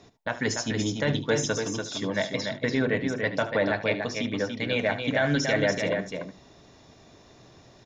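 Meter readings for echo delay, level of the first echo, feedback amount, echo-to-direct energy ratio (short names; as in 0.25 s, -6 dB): 74 ms, -14.0 dB, no steady repeat, -5.0 dB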